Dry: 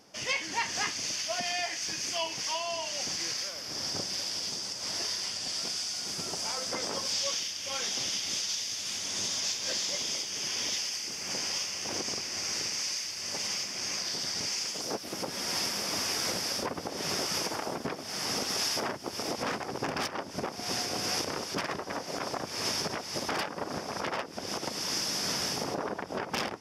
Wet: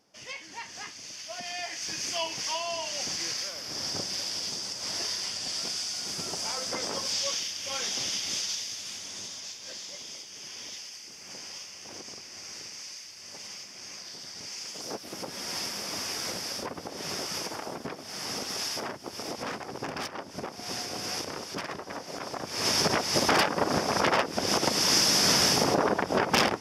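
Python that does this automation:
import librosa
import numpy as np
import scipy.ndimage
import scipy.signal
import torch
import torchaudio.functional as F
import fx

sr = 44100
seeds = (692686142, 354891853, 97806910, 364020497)

y = fx.gain(x, sr, db=fx.line((1.06, -9.5), (2.0, 1.0), (8.44, 1.0), (9.42, -9.0), (14.35, -9.0), (14.87, -2.5), (22.3, -2.5), (22.91, 9.0)))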